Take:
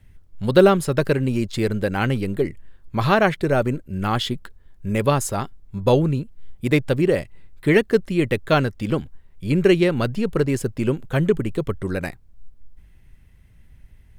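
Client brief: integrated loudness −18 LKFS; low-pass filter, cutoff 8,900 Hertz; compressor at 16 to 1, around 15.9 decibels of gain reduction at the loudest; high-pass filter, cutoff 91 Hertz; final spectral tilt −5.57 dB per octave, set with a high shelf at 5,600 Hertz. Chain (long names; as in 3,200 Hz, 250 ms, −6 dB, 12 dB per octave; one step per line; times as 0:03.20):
high-pass filter 91 Hz
low-pass filter 8,900 Hz
high-shelf EQ 5,600 Hz +6.5 dB
downward compressor 16 to 1, threshold −24 dBFS
level +12.5 dB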